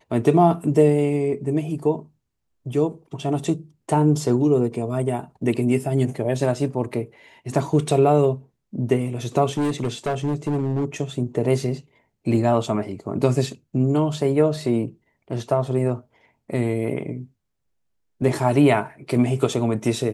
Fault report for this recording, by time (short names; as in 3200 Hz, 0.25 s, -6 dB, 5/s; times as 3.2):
9.57–10.85 clipped -18.5 dBFS